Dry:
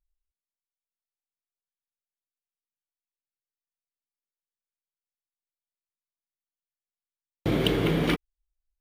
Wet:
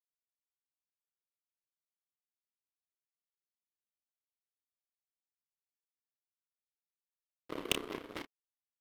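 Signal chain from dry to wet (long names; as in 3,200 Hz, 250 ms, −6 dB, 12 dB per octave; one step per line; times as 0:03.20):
source passing by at 0:03.26, 21 m/s, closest 14 metres
high-pass filter 320 Hz 24 dB per octave
low-shelf EQ 430 Hz +9 dB
power curve on the samples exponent 3
double-tracking delay 31 ms −7.5 dB
level +15.5 dB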